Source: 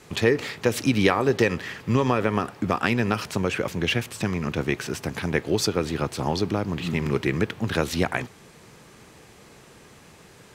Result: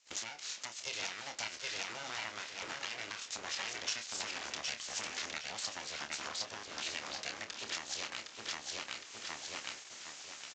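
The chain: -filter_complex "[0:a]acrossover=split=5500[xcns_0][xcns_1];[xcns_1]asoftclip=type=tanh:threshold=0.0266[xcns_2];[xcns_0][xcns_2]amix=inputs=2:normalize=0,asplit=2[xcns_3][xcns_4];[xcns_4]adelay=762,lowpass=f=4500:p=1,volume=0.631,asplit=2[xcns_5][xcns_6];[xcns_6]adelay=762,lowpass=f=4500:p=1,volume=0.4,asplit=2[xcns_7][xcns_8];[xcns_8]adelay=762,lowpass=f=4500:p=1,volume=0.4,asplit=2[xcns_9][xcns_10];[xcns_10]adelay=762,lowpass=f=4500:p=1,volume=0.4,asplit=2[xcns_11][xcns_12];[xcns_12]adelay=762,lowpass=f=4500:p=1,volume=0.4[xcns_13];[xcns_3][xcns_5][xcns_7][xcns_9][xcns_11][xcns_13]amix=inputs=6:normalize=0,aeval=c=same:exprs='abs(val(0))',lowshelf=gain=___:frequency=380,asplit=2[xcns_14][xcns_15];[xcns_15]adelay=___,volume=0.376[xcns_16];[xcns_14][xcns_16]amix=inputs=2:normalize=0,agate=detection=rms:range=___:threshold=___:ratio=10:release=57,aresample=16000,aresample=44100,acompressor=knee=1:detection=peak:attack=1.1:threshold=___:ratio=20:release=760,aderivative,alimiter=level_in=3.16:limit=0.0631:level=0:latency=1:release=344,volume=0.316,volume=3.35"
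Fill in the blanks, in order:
3.5, 27, 0.112, 0.00708, 0.0891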